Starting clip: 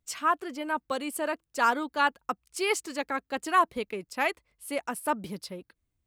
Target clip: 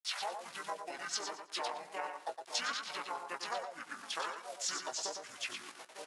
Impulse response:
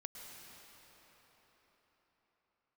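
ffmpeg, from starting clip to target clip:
-filter_complex "[0:a]dynaudnorm=framelen=110:gausssize=13:maxgain=9.5dB,asplit=4[link_01][link_02][link_03][link_04];[link_02]asetrate=29433,aresample=44100,atempo=1.49831,volume=-12dB[link_05];[link_03]asetrate=55563,aresample=44100,atempo=0.793701,volume=-1dB[link_06];[link_04]asetrate=58866,aresample=44100,atempo=0.749154,volume=-11dB[link_07];[link_01][link_05][link_06][link_07]amix=inputs=4:normalize=0,asplit=2[link_08][link_09];[link_09]adelay=912,lowpass=frequency=1500:poles=1,volume=-19.5dB,asplit=2[link_10][link_11];[link_11]adelay=912,lowpass=frequency=1500:poles=1,volume=0.37,asplit=2[link_12][link_13];[link_13]adelay=912,lowpass=frequency=1500:poles=1,volume=0.37[link_14];[link_10][link_12][link_14]amix=inputs=3:normalize=0[link_15];[link_08][link_15]amix=inputs=2:normalize=0,acrusher=bits=6:mix=0:aa=0.000001,acompressor=threshold=-28dB:ratio=8,asplit=2[link_16][link_17];[link_17]aecho=0:1:105|210|315:0.501|0.105|0.0221[link_18];[link_16][link_18]amix=inputs=2:normalize=0,asetrate=22696,aresample=44100,atempo=1.94306,highpass=930,asplit=2[link_19][link_20];[link_20]adelay=17,volume=-10.5dB[link_21];[link_19][link_21]amix=inputs=2:normalize=0,volume=-3dB"

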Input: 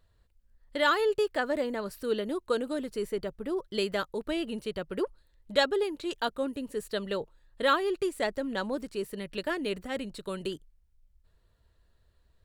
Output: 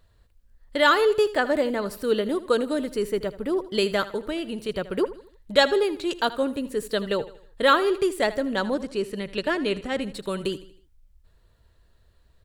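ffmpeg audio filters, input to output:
ffmpeg -i in.wav -filter_complex "[0:a]asettb=1/sr,asplit=3[link_01][link_02][link_03];[link_01]atrim=end=4.164[link_04];[link_02]atrim=start=4.16:end=4.69,asetpts=PTS-STARTPTS,afade=type=in:duration=0.004:curve=qsin,afade=type=out:start_time=0.526:duration=0.004:curve=qsin,acompressor=threshold=-36dB:ratio=2[link_05];[link_03]atrim=start=4.686[link_06];[link_04][link_05]acrossfade=duration=0.004:curve1=hsin:curve2=qsin[link_07];[link_07][link_06]acrossfade=duration=0.004:curve1=qsin:curve2=hsin,asettb=1/sr,asplit=3[link_08][link_09][link_10];[link_08]atrim=end=8.744[link_11];[link_09]atrim=start=8.74:end=10.02,asetpts=PTS-STARTPTS,afade=type=in:duration=0.004:curve=qsin,afade=type=out:start_time=1.276:duration=0.004:curve=qsin,lowpass=8300[link_12];[link_10]atrim=start=10.016[link_13];[link_11][link_12]acrossfade=duration=0.004:curve1=hsin:curve2=qsin[link_14];[link_14][link_13]acrossfade=duration=0.004:curve1=qsin:curve2=hsin,aecho=1:1:79|158|237|316:0.158|0.0682|0.0293|0.0126,volume=6.5dB" out.wav

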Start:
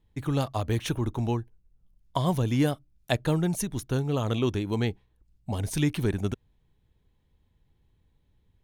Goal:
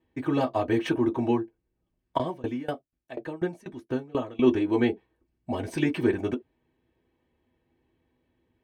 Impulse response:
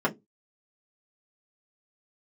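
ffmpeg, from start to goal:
-filter_complex "[0:a]highpass=57[link_01];[1:a]atrim=start_sample=2205,afade=type=out:start_time=0.18:duration=0.01,atrim=end_sample=8379,asetrate=70560,aresample=44100[link_02];[link_01][link_02]afir=irnorm=-1:irlink=0,asplit=3[link_03][link_04][link_05];[link_03]afade=type=out:start_time=2.17:duration=0.02[link_06];[link_04]aeval=exprs='val(0)*pow(10,-24*if(lt(mod(4.1*n/s,1),2*abs(4.1)/1000),1-mod(4.1*n/s,1)/(2*abs(4.1)/1000),(mod(4.1*n/s,1)-2*abs(4.1)/1000)/(1-2*abs(4.1)/1000))/20)':channel_layout=same,afade=type=in:start_time=2.17:duration=0.02,afade=type=out:start_time=4.42:duration=0.02[link_07];[link_05]afade=type=in:start_time=4.42:duration=0.02[link_08];[link_06][link_07][link_08]amix=inputs=3:normalize=0,volume=-6.5dB"

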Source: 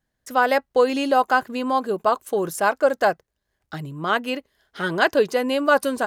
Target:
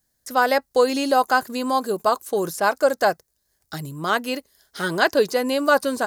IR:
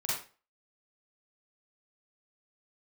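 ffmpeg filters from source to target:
-filter_complex "[0:a]aexciter=amount=4.3:drive=6:freq=4200,acrossover=split=4200[link_01][link_02];[link_02]acompressor=threshold=-35dB:ratio=4:attack=1:release=60[link_03];[link_01][link_03]amix=inputs=2:normalize=0"

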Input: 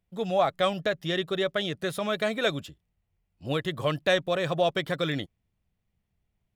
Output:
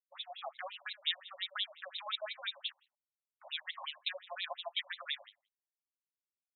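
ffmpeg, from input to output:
ffmpeg -i in.wav -filter_complex "[0:a]adynamicequalizer=threshold=0.00447:dfrequency=110:dqfactor=0.75:tfrequency=110:tqfactor=0.75:attack=5:release=100:ratio=0.375:range=3.5:mode=cutabove:tftype=bell,aresample=11025,acrusher=bits=7:mix=0:aa=0.000001,aresample=44100,alimiter=limit=-18dB:level=0:latency=1:release=218,acompressor=threshold=-36dB:ratio=6,equalizer=frequency=3800:width_type=o:width=1:gain=11.5,asplit=2[link_01][link_02];[link_02]aecho=0:1:76|152|228:0.126|0.0441|0.0154[link_03];[link_01][link_03]amix=inputs=2:normalize=0,afftfilt=real='re*between(b*sr/1024,740*pow(3000/740,0.5+0.5*sin(2*PI*5.7*pts/sr))/1.41,740*pow(3000/740,0.5+0.5*sin(2*PI*5.7*pts/sr))*1.41)':imag='im*between(b*sr/1024,740*pow(3000/740,0.5+0.5*sin(2*PI*5.7*pts/sr))/1.41,740*pow(3000/740,0.5+0.5*sin(2*PI*5.7*pts/sr))*1.41)':win_size=1024:overlap=0.75,volume=2dB" out.wav

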